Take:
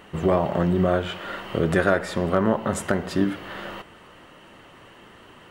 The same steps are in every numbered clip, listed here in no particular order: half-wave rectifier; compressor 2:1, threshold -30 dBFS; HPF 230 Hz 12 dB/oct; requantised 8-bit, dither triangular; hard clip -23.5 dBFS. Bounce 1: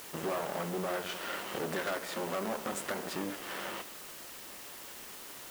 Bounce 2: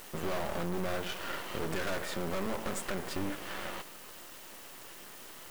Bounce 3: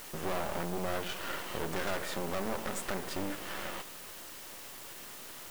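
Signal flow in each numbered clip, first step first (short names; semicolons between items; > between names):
half-wave rectifier > compressor > hard clip > HPF > requantised; HPF > hard clip > compressor > requantised > half-wave rectifier; hard clip > compressor > HPF > half-wave rectifier > requantised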